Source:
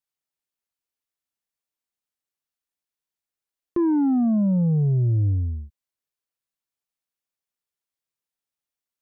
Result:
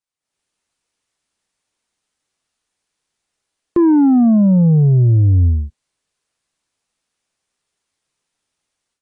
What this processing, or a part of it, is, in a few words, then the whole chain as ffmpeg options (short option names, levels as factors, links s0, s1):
low-bitrate web radio: -af "dynaudnorm=f=190:g=3:m=5.31,alimiter=limit=0.376:level=0:latency=1" -ar 22050 -c:a aac -b:a 32k